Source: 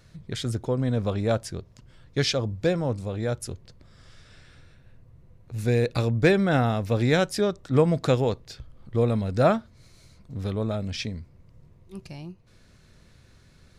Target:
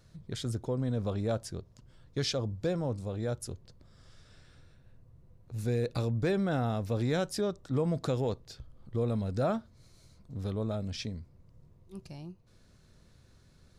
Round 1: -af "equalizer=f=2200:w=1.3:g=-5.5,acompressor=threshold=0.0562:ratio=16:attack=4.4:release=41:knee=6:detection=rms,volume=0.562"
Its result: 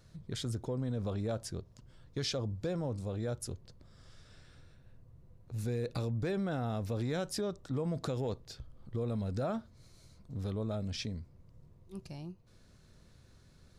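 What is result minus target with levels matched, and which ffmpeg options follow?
compression: peak gain reduction +6 dB
-af "equalizer=f=2200:w=1.3:g=-5.5,acompressor=threshold=0.119:ratio=16:attack=4.4:release=41:knee=6:detection=rms,volume=0.562"

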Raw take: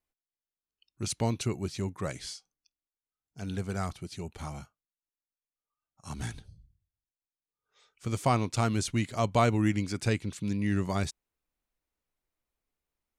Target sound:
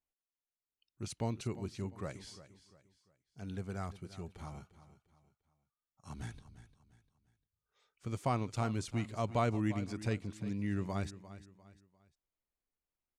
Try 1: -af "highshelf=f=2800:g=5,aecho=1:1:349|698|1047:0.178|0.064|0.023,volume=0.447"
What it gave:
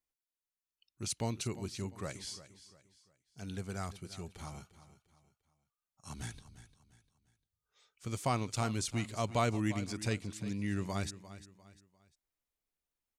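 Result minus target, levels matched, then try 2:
4 kHz band +6.5 dB
-af "highshelf=f=2800:g=-6,aecho=1:1:349|698|1047:0.178|0.064|0.023,volume=0.447"

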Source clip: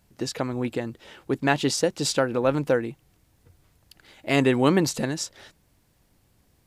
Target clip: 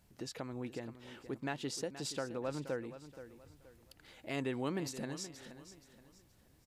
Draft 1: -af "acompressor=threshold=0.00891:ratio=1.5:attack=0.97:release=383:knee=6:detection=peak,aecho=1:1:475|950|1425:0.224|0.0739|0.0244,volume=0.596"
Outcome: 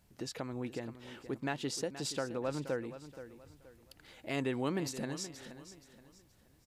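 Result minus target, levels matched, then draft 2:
compression: peak gain reduction -2.5 dB
-af "acompressor=threshold=0.00355:ratio=1.5:attack=0.97:release=383:knee=6:detection=peak,aecho=1:1:475|950|1425:0.224|0.0739|0.0244,volume=0.596"

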